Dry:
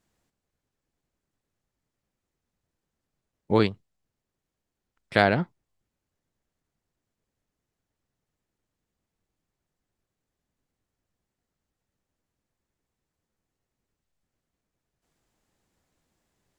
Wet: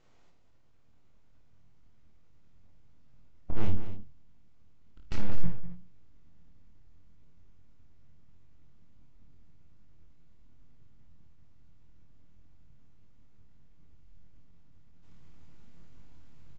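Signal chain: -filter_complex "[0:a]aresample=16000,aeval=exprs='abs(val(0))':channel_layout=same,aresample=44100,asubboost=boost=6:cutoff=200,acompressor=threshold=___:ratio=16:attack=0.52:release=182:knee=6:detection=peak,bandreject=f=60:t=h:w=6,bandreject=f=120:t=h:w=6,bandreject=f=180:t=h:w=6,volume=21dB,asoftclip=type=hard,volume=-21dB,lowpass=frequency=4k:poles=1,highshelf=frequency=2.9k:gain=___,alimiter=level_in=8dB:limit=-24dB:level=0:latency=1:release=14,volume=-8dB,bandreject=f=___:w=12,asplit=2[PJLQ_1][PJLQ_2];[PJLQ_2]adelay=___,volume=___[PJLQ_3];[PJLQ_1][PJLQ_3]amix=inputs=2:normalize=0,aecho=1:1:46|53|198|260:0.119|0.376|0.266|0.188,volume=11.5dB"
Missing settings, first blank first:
-11dB, -4, 1.7k, 24, -4dB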